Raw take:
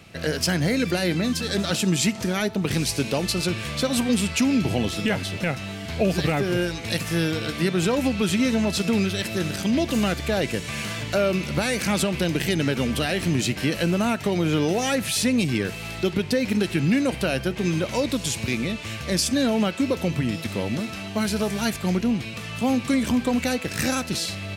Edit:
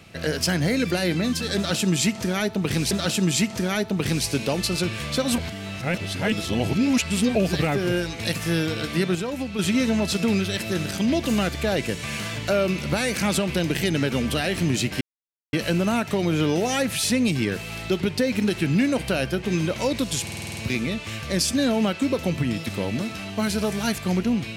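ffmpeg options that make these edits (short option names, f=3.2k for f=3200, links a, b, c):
-filter_complex "[0:a]asplit=14[a][b][c][d][e][f][g][h][i][j][k][l][m][n];[a]atrim=end=2.912[o];[b]atrim=start=1.558:end=4.032[p];[c]atrim=start=4.028:end=6.002,asetpts=PTS-STARTPTS,areverse[q];[d]atrim=start=5.998:end=7.802[r];[e]atrim=start=7.798:end=8.242,asetpts=PTS-STARTPTS,volume=-6.5dB[s];[f]atrim=start=8.238:end=13.66,asetpts=PTS-STARTPTS,afade=t=out:st=5.418:d=0.004:c=hsin,apad=pad_dur=0.52[t];[g]atrim=start=13.66:end=18.402,asetpts=PTS-STARTPTS,afade=t=in:d=0.004:c=hsin[u];[h]atrim=start=18.348:end=18.402[v];[i]atrim=start=18.348:end=18.402[w];[j]atrim=start=18.348:end=18.402[x];[k]atrim=start=18.348:end=18.402[y];[l]atrim=start=18.348:end=18.402[z];[m]atrim=start=18.348:end=18.402[aa];[n]atrim=start=18.348[ab];[o][p]acrossfade=d=0.004:c1=hsin:c2=hsin[ac];[ac][q]acrossfade=d=0.004:c1=hsin:c2=hsin[ad];[ad][r]acrossfade=d=0.004:c1=hsin:c2=hsin[ae];[ae][s]acrossfade=d=0.004:c1=hsin:c2=hsin[af];[t][u]concat=n=2:v=0:a=1[ag];[af][ag]acrossfade=d=0.004:c1=hsin:c2=hsin[ah];[ah][v]acrossfade=d=0.004:c1=hsin:c2=hsin[ai];[ai][w]acrossfade=d=0.004:c1=hsin:c2=hsin[aj];[aj][x]acrossfade=d=0.004:c1=hsin:c2=hsin[ak];[ak][y]acrossfade=d=0.004:c1=hsin:c2=hsin[al];[al][z]acrossfade=d=0.004:c1=hsin:c2=hsin[am];[am][aa]acrossfade=d=0.004:c1=hsin:c2=hsin[an];[an][ab]acrossfade=d=0.004:c1=hsin:c2=hsin"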